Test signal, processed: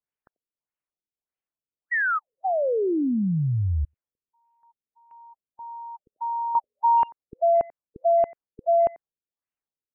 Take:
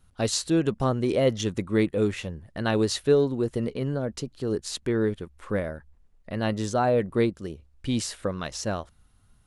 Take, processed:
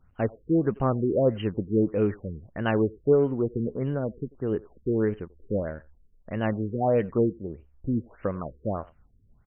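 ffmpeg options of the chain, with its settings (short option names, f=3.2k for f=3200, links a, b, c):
-filter_complex "[0:a]asplit=2[a][b];[b]adelay=90,highpass=300,lowpass=3.4k,asoftclip=type=hard:threshold=-20dB,volume=-21dB[c];[a][c]amix=inputs=2:normalize=0,afftfilt=real='re*lt(b*sr/1024,470*pow(3200/470,0.5+0.5*sin(2*PI*1.6*pts/sr)))':imag='im*lt(b*sr/1024,470*pow(3200/470,0.5+0.5*sin(2*PI*1.6*pts/sr)))':win_size=1024:overlap=0.75"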